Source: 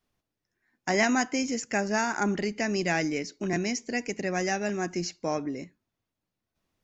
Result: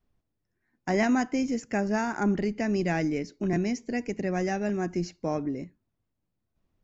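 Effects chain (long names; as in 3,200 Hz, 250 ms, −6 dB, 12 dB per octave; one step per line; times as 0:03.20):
spectral tilt −2.5 dB per octave
level −2.5 dB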